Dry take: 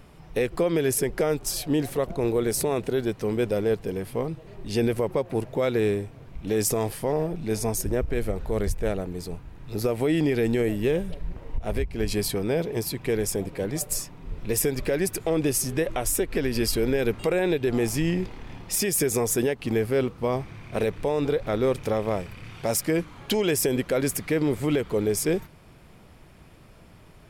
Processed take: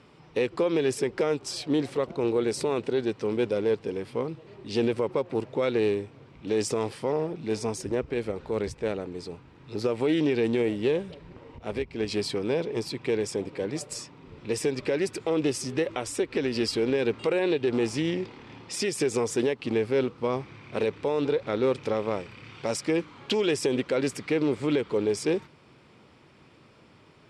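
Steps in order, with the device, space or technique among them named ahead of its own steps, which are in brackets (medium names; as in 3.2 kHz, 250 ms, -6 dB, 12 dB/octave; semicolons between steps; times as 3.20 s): full-range speaker at full volume (loudspeaker Doppler distortion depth 0.15 ms; cabinet simulation 150–7400 Hz, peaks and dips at 180 Hz -6 dB, 680 Hz -7 dB, 1.7 kHz -3 dB, 6.6 kHz -6 dB)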